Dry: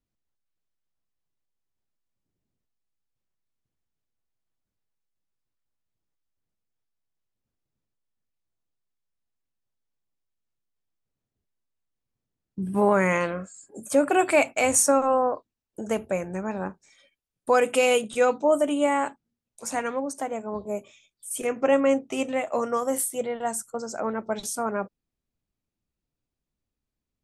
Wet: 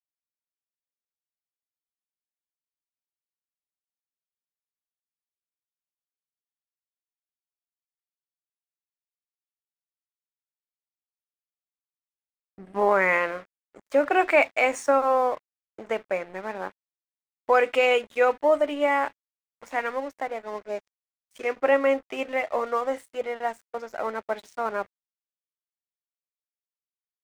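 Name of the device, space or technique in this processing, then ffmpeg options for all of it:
pocket radio on a weak battery: -filter_complex "[0:a]highpass=400,lowpass=3.1k,aeval=exprs='sgn(val(0))*max(abs(val(0))-0.00473,0)':c=same,equalizer=f=2k:t=o:w=0.44:g=5.5,asettb=1/sr,asplit=3[a][b][c];[a]atrim=end=20.474[d];[b]atrim=start=20.47:end=21.62,asetpts=PTS-STARTPTS,afade=t=in:d=0.004:c=qsin,afade=t=out:st=1.146:d=0.004:c=qsin,equalizer=f=5.6k:t=o:w=0.61:g=5[e];[c]atrim=start=21.616[f];[d][e]acrossfade=d=0.004:c1=hsin:c2=qsin[g];[g][f]acrossfade=d=0.004:c1=qsin:c2=hsin,volume=1.5dB"

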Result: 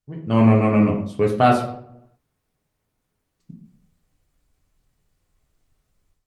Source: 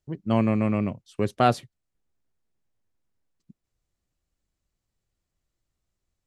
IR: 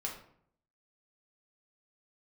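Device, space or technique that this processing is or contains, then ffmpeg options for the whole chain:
speakerphone in a meeting room: -filter_complex "[1:a]atrim=start_sample=2205[a];[0:a][a]afir=irnorm=-1:irlink=0,dynaudnorm=f=210:g=3:m=13.5dB,volume=-1dB" -ar 48000 -c:a libopus -b:a 32k

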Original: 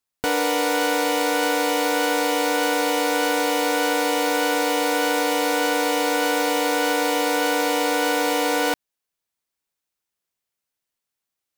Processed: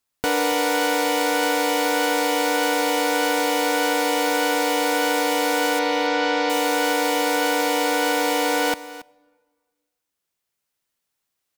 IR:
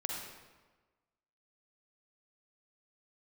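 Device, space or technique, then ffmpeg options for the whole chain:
ducked reverb: -filter_complex "[0:a]asettb=1/sr,asplit=3[a][b][c];[a]atrim=end=5.794[d];[b]atrim=start=5.79:end=6.5,asetpts=PTS-STARTPTS,afade=t=in:d=0.004:c=qsin,afade=t=out:st=0.706:d=0.004:c=qsin,lowpass=f=5.2k:w=0.5412,lowpass=f=5.2k:w=1.3066[e];[c]atrim=start=6.496[f];[d][e]acrossfade=d=0.004:c1=hsin:c2=qsin[g];[g][f]acrossfade=d=0.004:c1=qsin:c2=hsin,aecho=1:1:278:0.141,asplit=3[h][i][j];[1:a]atrim=start_sample=2205[k];[i][k]afir=irnorm=-1:irlink=0[l];[j]apad=whole_len=522928[m];[l][m]sidechaincompress=threshold=-40dB:ratio=8:attack=9.5:release=1430,volume=-2.5dB[n];[h][n]amix=inputs=2:normalize=0"

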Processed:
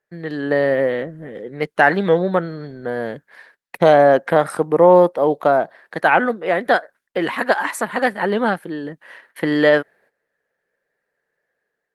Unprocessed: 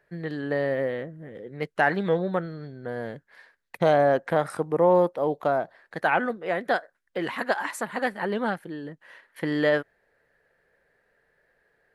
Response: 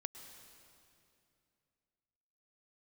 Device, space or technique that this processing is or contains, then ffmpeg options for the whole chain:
video call: -af "highpass=160,dynaudnorm=f=130:g=5:m=5.5dB,agate=range=-15dB:threshold=-55dB:ratio=16:detection=peak,volume=3.5dB" -ar 48000 -c:a libopus -b:a 32k

